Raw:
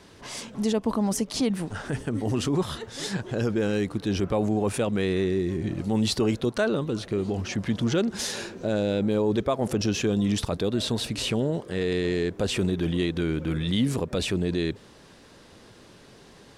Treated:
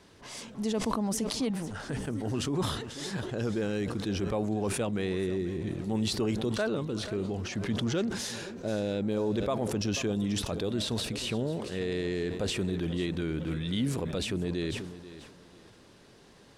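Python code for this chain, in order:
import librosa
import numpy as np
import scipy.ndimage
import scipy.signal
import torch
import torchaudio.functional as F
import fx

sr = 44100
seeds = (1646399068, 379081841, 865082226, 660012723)

y = fx.echo_feedback(x, sr, ms=487, feedback_pct=28, wet_db=-15.0)
y = fx.sustainer(y, sr, db_per_s=49.0)
y = F.gain(torch.from_numpy(y), -6.0).numpy()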